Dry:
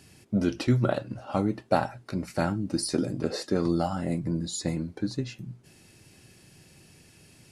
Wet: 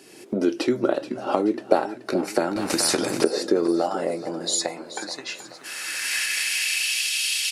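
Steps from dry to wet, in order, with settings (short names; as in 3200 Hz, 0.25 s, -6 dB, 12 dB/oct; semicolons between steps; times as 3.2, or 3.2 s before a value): recorder AGC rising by 28 dB/s; high-pass sweep 360 Hz -> 3100 Hz, 3.53–7.1; in parallel at -1 dB: compressor, threshold -34 dBFS, peak gain reduction 20.5 dB; on the sum: feedback echo 0.429 s, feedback 49%, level -13.5 dB; 2.56–3.24 spectral compressor 2:1; gain -1 dB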